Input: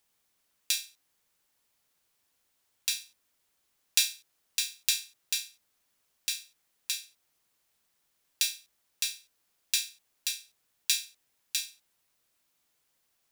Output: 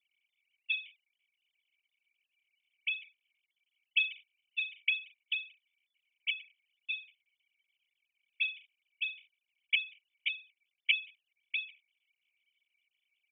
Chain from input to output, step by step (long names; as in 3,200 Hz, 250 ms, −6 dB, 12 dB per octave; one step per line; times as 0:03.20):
three sine waves on the formant tracks
formant resonators in series i
high shelf with overshoot 1,600 Hz +13 dB, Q 3
level −4.5 dB